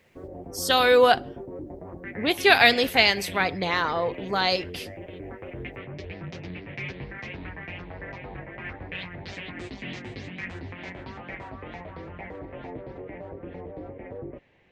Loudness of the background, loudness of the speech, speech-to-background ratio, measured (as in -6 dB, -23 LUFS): -38.5 LUFS, -21.0 LUFS, 17.5 dB